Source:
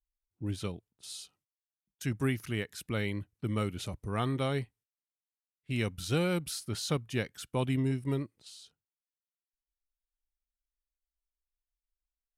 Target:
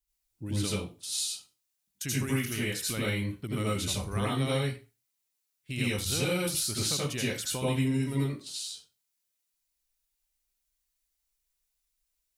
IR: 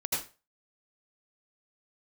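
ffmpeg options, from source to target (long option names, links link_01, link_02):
-filter_complex "[0:a]highshelf=frequency=2600:gain=11,acompressor=threshold=-32dB:ratio=6[link_01];[1:a]atrim=start_sample=2205[link_02];[link_01][link_02]afir=irnorm=-1:irlink=0"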